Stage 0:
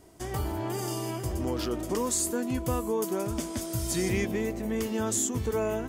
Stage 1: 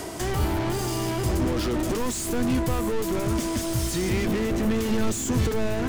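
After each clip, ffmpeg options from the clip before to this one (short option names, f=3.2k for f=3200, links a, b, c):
-filter_complex "[0:a]asplit=2[a][b];[b]highpass=f=720:p=1,volume=33dB,asoftclip=type=tanh:threshold=-16.5dB[c];[a][c]amix=inputs=2:normalize=0,lowpass=f=6.9k:p=1,volume=-6dB,lowshelf=f=95:g=10,acrossover=split=290[d][e];[e]acompressor=threshold=-40dB:ratio=2[f];[d][f]amix=inputs=2:normalize=0,volume=2.5dB"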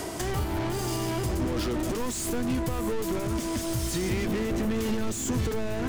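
-af "alimiter=limit=-19dB:level=0:latency=1:release=283"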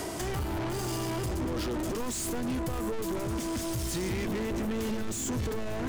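-af "asoftclip=type=tanh:threshold=-27dB"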